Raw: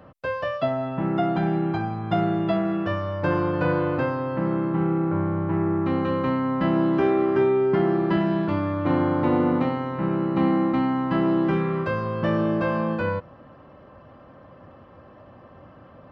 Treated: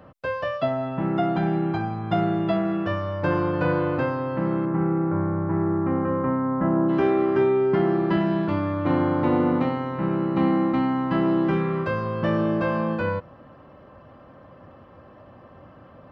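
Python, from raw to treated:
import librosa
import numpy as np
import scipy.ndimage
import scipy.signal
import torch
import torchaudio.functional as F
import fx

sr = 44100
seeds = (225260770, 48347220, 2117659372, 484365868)

y = fx.lowpass(x, sr, hz=fx.line((4.65, 2300.0), (6.88, 1500.0)), slope=24, at=(4.65, 6.88), fade=0.02)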